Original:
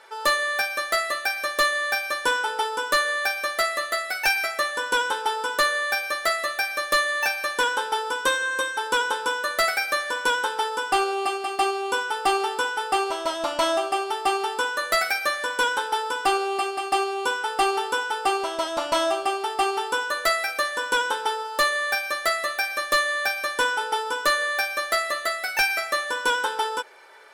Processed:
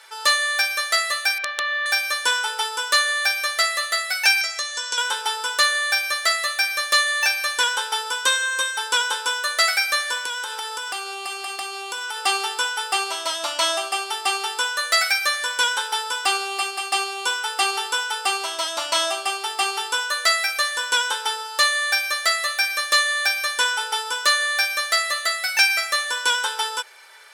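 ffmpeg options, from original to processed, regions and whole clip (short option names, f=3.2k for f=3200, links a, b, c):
-filter_complex "[0:a]asettb=1/sr,asplit=3[a][b][c];[a]atrim=end=1.384[d];[b]atrim=start=1.38:end=1.86,asetpts=PTS-STARTPTS,afade=t=in:d=0.004:c=qsin,afade=t=out:st=0.476:d=0.004:c=qsin,lowpass=f=3.2k:w=0.5412,lowpass=f=3.2k:w=1.3066,acompressor=threshold=-22dB:ratio=10:attack=3.2:release=140:knee=1:detection=peak,aeval=exprs='(mod(7.08*val(0)+1,2)-1)/7.08':c=same[e];[c]atrim=start=1.856[f];[d][e]acrossfade=d=0.004:c1=hsin:c2=qsin[g];[g][f]acrossfade=d=0.004:c1=qsin:c2=hsin,asettb=1/sr,asplit=3[h][i][j];[h]atrim=end=4.414[k];[i]atrim=start=4.41:end=4.98,asetpts=PTS-STARTPTS,afade=t=in:d=0.004:c=qsin,afade=t=out:st=0.566:d=0.004:c=qsin,acrossover=split=370|3200[l][m][n];[l]acompressor=threshold=-46dB:ratio=4[o];[m]acompressor=threshold=-33dB:ratio=4[p];[n]acompressor=threshold=-38dB:ratio=4[q];[o][p][q]amix=inputs=3:normalize=0,lowpass=f=6.4k:t=q:w=2.3[r];[j]atrim=start=4.976[s];[k][r]acrossfade=d=0.004:c1=hsin:c2=qsin[t];[t][s]acrossfade=d=0.004:c1=qsin:c2=hsin,asettb=1/sr,asplit=3[u][v][w];[u]atrim=end=10.224[x];[v]atrim=start=10.22:end=12.18,asetpts=PTS-STARTPTS,afade=t=in:d=0.004:c=qsin,afade=t=out:st=1.956:d=0.004:c=qsin,acompressor=threshold=-26dB:ratio=12:attack=3.2:release=140:knee=1:detection=peak,asoftclip=type=hard:threshold=-21dB[y];[w]atrim=start=12.176[z];[x][y]acrossfade=d=0.004:c1=hsin:c2=qsin[aa];[aa][z]acrossfade=d=0.004:c1=qsin:c2=hsin,acrossover=split=9200[ab][ac];[ac]acompressor=threshold=-49dB:ratio=4:attack=1:release=60[ad];[ab][ad]amix=inputs=2:normalize=0,highpass=f=1k:p=1,highshelf=f=2.3k:g=11"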